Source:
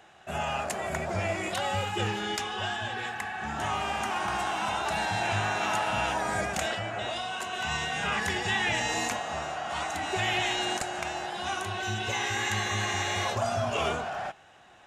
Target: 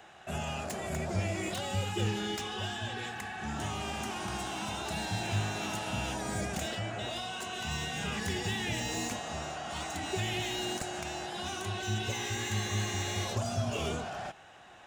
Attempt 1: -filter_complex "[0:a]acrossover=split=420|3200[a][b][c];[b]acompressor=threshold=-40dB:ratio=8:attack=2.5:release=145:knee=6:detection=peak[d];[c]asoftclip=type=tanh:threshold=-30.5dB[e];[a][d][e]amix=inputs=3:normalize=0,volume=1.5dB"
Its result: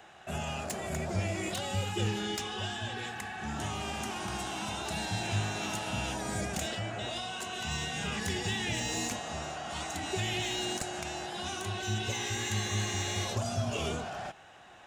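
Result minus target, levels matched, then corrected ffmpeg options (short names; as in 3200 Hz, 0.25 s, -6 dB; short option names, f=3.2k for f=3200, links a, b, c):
soft clip: distortion -6 dB
-filter_complex "[0:a]acrossover=split=420|3200[a][b][c];[b]acompressor=threshold=-40dB:ratio=8:attack=2.5:release=145:knee=6:detection=peak[d];[c]asoftclip=type=tanh:threshold=-37.5dB[e];[a][d][e]amix=inputs=3:normalize=0,volume=1.5dB"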